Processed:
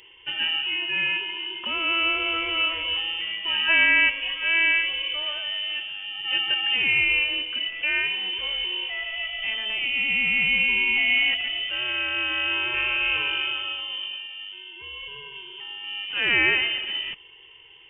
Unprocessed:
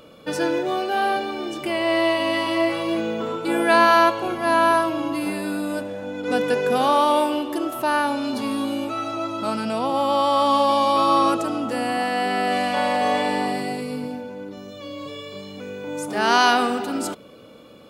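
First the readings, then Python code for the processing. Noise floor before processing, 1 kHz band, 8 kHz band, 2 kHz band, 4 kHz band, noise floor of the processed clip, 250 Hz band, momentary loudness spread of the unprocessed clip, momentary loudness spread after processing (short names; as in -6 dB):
-45 dBFS, -18.0 dB, under -40 dB, +5.0 dB, +7.5 dB, -49 dBFS, -18.0 dB, 14 LU, 14 LU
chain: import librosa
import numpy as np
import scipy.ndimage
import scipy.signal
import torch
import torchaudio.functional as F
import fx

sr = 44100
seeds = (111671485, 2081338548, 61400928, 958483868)

y = fx.freq_invert(x, sr, carrier_hz=3300)
y = F.gain(torch.from_numpy(y), -3.5).numpy()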